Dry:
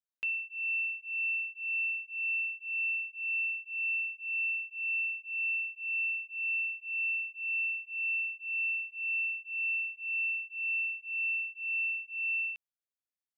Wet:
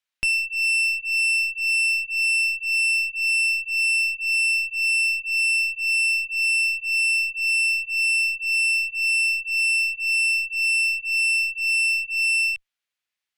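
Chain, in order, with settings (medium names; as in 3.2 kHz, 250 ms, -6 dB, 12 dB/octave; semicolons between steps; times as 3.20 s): peaking EQ 2.5 kHz +14.5 dB 2.5 oct; one-sided clip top -29.5 dBFS, bottom -16.5 dBFS; trim +1.5 dB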